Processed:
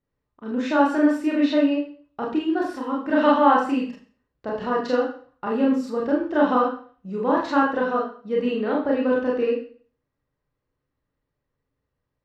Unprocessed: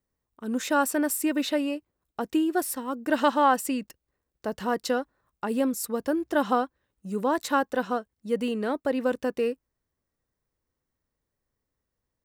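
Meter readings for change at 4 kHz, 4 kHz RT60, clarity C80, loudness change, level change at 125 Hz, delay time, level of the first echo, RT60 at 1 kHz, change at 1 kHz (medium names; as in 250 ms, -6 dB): 0.0 dB, 0.45 s, 9.0 dB, +5.0 dB, no reading, no echo, no echo, 0.45 s, +4.0 dB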